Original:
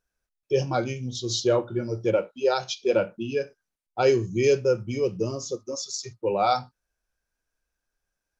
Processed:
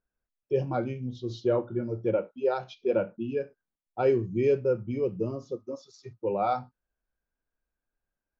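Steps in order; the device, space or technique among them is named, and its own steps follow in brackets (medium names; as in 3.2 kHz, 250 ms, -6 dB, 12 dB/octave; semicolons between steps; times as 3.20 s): phone in a pocket (low-pass 3.1 kHz 12 dB/octave; peaking EQ 240 Hz +3.5 dB 0.77 oct; treble shelf 2.2 kHz -10 dB); trim -3.5 dB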